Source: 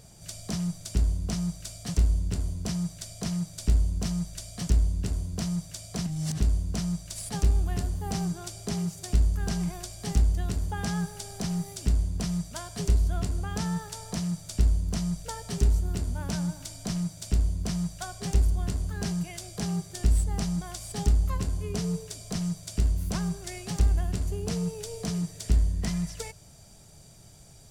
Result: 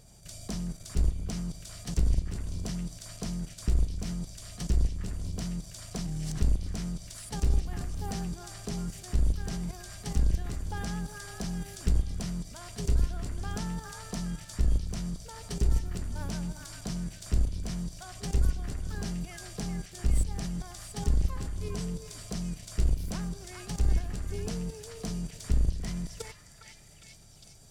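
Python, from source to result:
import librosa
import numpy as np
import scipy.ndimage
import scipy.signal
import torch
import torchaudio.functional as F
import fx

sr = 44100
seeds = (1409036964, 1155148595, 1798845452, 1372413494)

y = fx.octave_divider(x, sr, octaves=2, level_db=-2.0)
y = fx.level_steps(y, sr, step_db=11)
y = fx.echo_stepped(y, sr, ms=407, hz=1500.0, octaves=0.7, feedback_pct=70, wet_db=-2)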